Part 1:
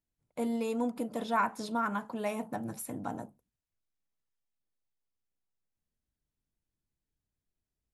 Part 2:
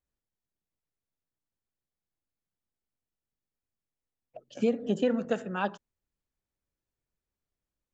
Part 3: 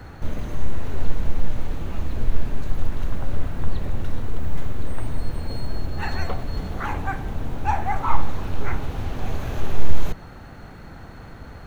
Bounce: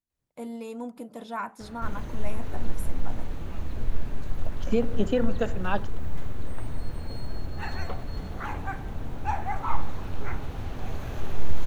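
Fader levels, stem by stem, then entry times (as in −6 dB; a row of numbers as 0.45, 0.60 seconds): −4.5, +1.5, −6.0 decibels; 0.00, 0.10, 1.60 seconds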